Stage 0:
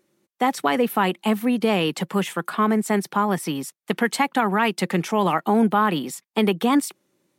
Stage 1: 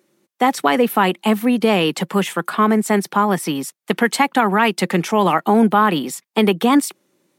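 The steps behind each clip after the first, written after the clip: high-pass 140 Hz; trim +5 dB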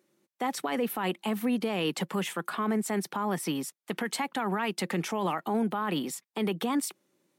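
peak limiter -12 dBFS, peak gain reduction 10 dB; trim -8.5 dB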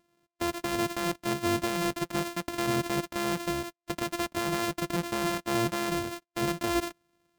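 sorted samples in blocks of 128 samples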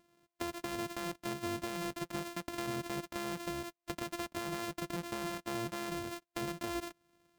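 compression 3:1, threshold -40 dBFS, peak gain reduction 12 dB; trim +1 dB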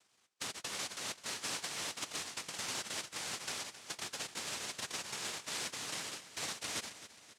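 noise-vocoded speech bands 1; feedback delay 266 ms, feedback 51%, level -14 dB; trim -2.5 dB

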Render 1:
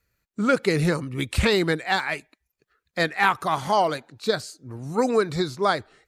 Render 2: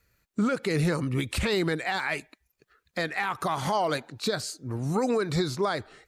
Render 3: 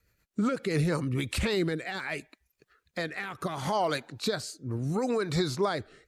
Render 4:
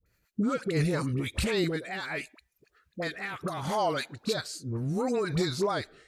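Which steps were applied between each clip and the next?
compression, threshold -24 dBFS, peak gain reduction 10 dB; peak limiter -22 dBFS, peak gain reduction 9 dB; trim +4.5 dB
rotary cabinet horn 8 Hz, later 0.7 Hz, at 0.45 s
phase dispersion highs, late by 60 ms, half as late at 840 Hz

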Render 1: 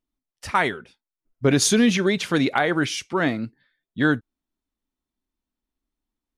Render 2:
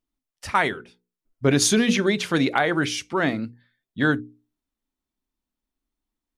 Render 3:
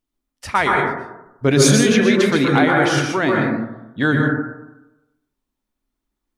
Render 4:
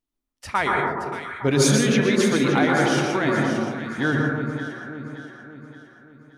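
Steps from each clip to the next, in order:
hum notches 60/120/180/240/300/360/420/480 Hz
plate-style reverb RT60 0.95 s, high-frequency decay 0.25×, pre-delay 110 ms, DRR -1 dB; trim +2.5 dB
echo whose repeats swap between lows and highs 287 ms, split 1.2 kHz, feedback 67%, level -6 dB; trim -5 dB

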